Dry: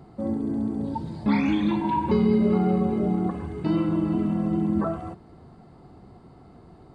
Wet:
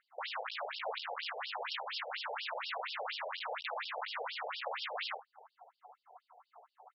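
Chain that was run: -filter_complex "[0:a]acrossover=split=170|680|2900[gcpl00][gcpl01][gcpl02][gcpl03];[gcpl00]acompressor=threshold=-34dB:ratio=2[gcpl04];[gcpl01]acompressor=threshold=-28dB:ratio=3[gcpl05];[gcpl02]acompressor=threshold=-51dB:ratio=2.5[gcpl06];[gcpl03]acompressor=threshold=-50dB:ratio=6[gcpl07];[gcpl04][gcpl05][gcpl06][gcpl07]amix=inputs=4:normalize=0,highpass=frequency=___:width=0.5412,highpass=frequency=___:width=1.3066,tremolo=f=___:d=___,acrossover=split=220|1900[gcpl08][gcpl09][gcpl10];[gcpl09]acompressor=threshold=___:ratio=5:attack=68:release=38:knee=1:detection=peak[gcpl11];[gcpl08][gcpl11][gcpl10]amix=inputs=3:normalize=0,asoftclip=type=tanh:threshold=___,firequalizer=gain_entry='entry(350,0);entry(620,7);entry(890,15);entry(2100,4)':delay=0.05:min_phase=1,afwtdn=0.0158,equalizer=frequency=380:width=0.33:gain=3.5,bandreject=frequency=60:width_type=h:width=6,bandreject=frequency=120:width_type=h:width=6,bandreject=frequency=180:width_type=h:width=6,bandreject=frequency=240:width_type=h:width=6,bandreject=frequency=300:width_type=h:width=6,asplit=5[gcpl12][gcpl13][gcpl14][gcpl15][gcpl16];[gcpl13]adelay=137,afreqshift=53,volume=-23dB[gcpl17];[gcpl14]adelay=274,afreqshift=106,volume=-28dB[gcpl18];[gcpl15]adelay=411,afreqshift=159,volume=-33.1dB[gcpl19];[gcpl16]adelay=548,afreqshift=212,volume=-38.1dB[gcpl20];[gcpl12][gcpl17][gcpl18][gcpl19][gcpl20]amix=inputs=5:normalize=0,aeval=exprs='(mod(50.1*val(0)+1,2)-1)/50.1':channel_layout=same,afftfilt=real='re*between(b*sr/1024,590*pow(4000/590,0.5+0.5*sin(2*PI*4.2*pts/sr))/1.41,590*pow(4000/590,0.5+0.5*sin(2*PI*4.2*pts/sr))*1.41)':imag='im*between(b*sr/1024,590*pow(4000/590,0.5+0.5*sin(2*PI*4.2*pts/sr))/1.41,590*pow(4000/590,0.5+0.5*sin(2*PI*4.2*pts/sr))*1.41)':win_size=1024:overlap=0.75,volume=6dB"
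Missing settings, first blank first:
47, 47, 2.9, 0.35, -50dB, -28dB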